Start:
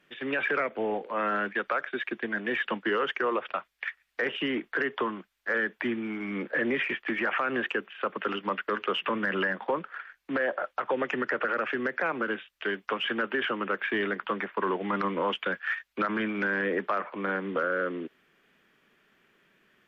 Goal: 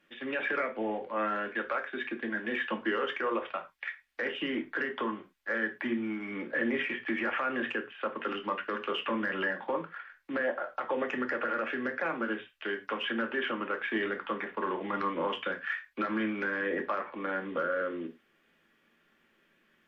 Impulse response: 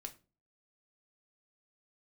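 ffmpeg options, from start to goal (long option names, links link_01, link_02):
-filter_complex "[1:a]atrim=start_sample=2205,atrim=end_sample=4410,asetrate=37485,aresample=44100[link_01];[0:a][link_01]afir=irnorm=-1:irlink=0"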